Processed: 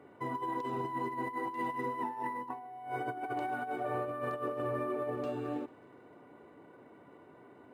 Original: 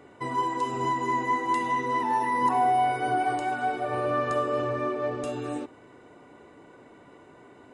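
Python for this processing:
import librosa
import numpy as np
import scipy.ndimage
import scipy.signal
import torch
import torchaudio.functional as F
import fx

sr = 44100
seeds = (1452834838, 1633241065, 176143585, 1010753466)

y = scipy.signal.sosfilt(scipy.signal.butter(2, 94.0, 'highpass', fs=sr, output='sos'), x)
y = fx.high_shelf(y, sr, hz=3300.0, db=-10.0)
y = fx.over_compress(y, sr, threshold_db=-29.0, ratio=-0.5)
y = fx.echo_wet_highpass(y, sr, ms=148, feedback_pct=72, hz=1900.0, wet_db=-21.0)
y = np.interp(np.arange(len(y)), np.arange(len(y))[::4], y[::4])
y = y * 10.0 ** (-6.5 / 20.0)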